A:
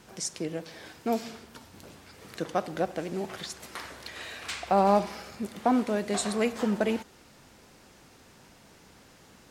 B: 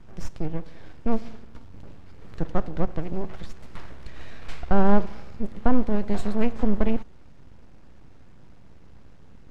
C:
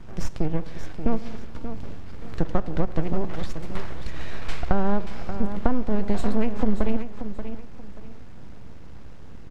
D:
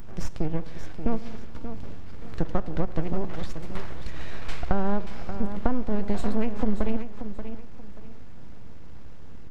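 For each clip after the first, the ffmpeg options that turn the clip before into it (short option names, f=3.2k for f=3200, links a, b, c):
-af "aeval=exprs='max(val(0),0)':c=same,aemphasis=mode=reproduction:type=riaa"
-filter_complex "[0:a]acompressor=threshold=-20dB:ratio=6,asplit=2[a][b];[b]aecho=0:1:582|1164|1746:0.316|0.0854|0.0231[c];[a][c]amix=inputs=2:normalize=0,volume=6.5dB"
-af "aeval=exprs='val(0)+0.5*0.0422*sgn(val(0))':c=same,volume=-2.5dB"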